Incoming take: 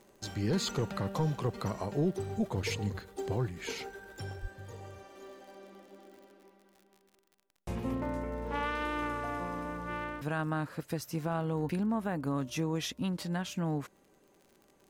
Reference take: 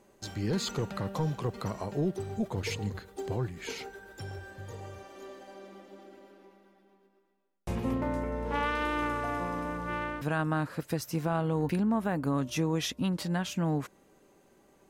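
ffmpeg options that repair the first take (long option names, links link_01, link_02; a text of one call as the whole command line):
ffmpeg -i in.wav -filter_complex "[0:a]adeclick=threshold=4,asplit=3[link_01][link_02][link_03];[link_01]afade=type=out:start_time=4.41:duration=0.02[link_04];[link_02]highpass=frequency=140:width=0.5412,highpass=frequency=140:width=1.3066,afade=type=in:start_time=4.41:duration=0.02,afade=type=out:start_time=4.53:duration=0.02[link_05];[link_03]afade=type=in:start_time=4.53:duration=0.02[link_06];[link_04][link_05][link_06]amix=inputs=3:normalize=0,asetnsamples=nb_out_samples=441:pad=0,asendcmd='4.33 volume volume 3.5dB',volume=0dB" out.wav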